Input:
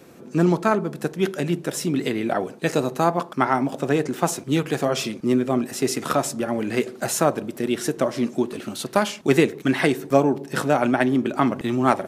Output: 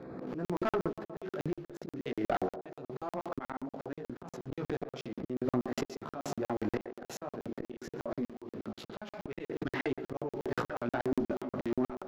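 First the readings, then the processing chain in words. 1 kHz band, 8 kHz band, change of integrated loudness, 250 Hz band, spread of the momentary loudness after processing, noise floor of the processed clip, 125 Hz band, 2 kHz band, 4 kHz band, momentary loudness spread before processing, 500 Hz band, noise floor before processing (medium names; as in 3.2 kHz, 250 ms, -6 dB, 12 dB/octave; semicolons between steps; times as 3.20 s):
-16.0 dB, -23.0 dB, -15.0 dB, -14.5 dB, 11 LU, under -85 dBFS, -15.5 dB, -15.5 dB, -18.0 dB, 6 LU, -14.0 dB, -43 dBFS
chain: local Wiener filter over 15 samples; chorus 0.2 Hz, delay 15.5 ms, depth 6.1 ms; in parallel at -10 dB: bit crusher 7-bit; on the sum: boxcar filter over 5 samples; slow attack 691 ms; on a send: band-passed feedback delay 135 ms, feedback 40%, band-pass 620 Hz, level -11 dB; on the sum: dynamic bell 170 Hz, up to -5 dB, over -42 dBFS, Q 1.4; valve stage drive 22 dB, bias 0.35; crackling interface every 0.12 s, samples 2048, zero, from 0.45 s; swell ahead of each attack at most 30 dB/s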